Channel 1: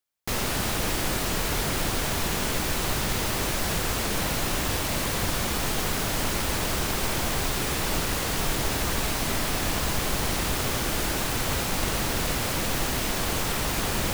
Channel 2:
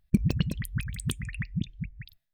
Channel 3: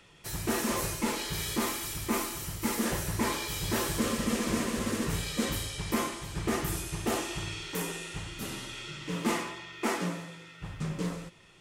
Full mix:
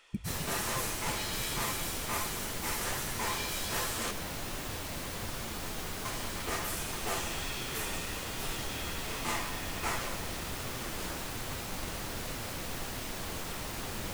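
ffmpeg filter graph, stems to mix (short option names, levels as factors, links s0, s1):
-filter_complex "[0:a]volume=0.422[s0];[1:a]volume=0.299[s1];[2:a]highpass=650,volume=1.33,asplit=3[s2][s3][s4];[s2]atrim=end=4.11,asetpts=PTS-STARTPTS,afade=t=out:st=4.106:d=0.004:c=hsin[s5];[s3]atrim=start=4.11:end=6.05,asetpts=PTS-STARTPTS,volume=0[s6];[s4]atrim=start=6.05,asetpts=PTS-STARTPTS,afade=t=in:d=0.004:c=hsin[s7];[s5][s6][s7]concat=n=3:v=0:a=1[s8];[s0][s1][s8]amix=inputs=3:normalize=0,flanger=delay=7.5:depth=4.9:regen=-50:speed=1.3:shape=triangular"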